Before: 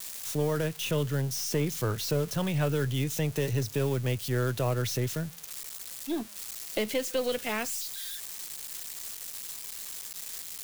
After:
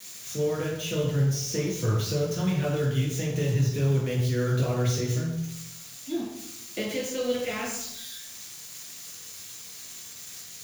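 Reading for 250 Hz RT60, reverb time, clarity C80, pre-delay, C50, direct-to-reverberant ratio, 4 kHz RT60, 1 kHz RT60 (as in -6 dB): 1.0 s, 0.85 s, 6.0 dB, 3 ms, 3.5 dB, -3.0 dB, 0.65 s, 0.75 s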